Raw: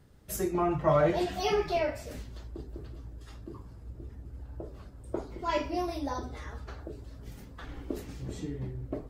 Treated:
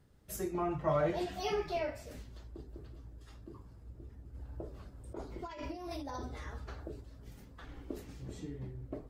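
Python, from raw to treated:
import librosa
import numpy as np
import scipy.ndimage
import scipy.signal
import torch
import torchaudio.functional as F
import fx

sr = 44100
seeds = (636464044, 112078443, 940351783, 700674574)

y = fx.over_compress(x, sr, threshold_db=-36.0, ratio=-1.0, at=(4.34, 7.0), fade=0.02)
y = F.gain(torch.from_numpy(y), -6.5).numpy()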